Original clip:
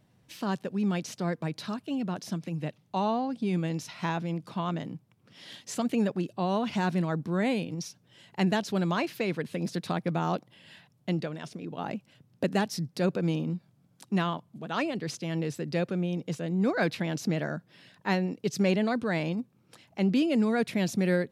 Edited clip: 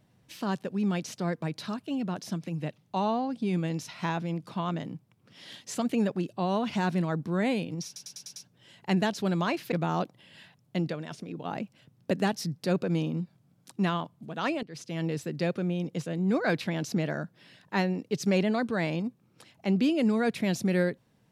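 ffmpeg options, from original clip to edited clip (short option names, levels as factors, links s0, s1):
-filter_complex "[0:a]asplit=8[s0][s1][s2][s3][s4][s5][s6][s7];[s0]atrim=end=7.962[s8];[s1]atrim=start=7.858:end=7.962[s9];[s2]atrim=start=7.858:end=7.962[s10];[s3]atrim=start=7.858:end=7.962[s11];[s4]atrim=start=7.858:end=7.962[s12];[s5]atrim=start=7.858:end=9.222[s13];[s6]atrim=start=10.048:end=14.96,asetpts=PTS-STARTPTS,afade=t=out:st=4.908:d=0.004:c=hsin:silence=0.112202[s14];[s7]atrim=start=14.96,asetpts=PTS-STARTPTS,afade=t=in:d=0.36:silence=0.112202[s15];[s8][s9]acrossfade=d=0.004:c1=hsin:c2=hsin[s16];[s16][s10]acrossfade=d=0.004:c1=hsin:c2=hsin[s17];[s17][s11]acrossfade=d=0.004:c1=hsin:c2=hsin[s18];[s18][s12]acrossfade=d=0.004:c1=hsin:c2=hsin[s19];[s19][s13]acrossfade=d=0.004:c1=hsin:c2=hsin[s20];[s14][s15]concat=n=2:v=0:a=1[s21];[s20][s21]acrossfade=d=0.004:c1=hsin:c2=hsin"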